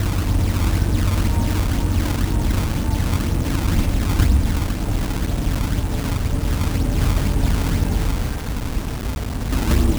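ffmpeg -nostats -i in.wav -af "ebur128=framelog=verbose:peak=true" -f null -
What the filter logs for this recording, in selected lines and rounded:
Integrated loudness:
  I:         -21.5 LUFS
  Threshold: -31.5 LUFS
Loudness range:
  LRA:         1.5 LU
  Threshold: -41.5 LUFS
  LRA low:   -22.3 LUFS
  LRA high:  -20.8 LUFS
True peak:
  Peak:       -1.1 dBFS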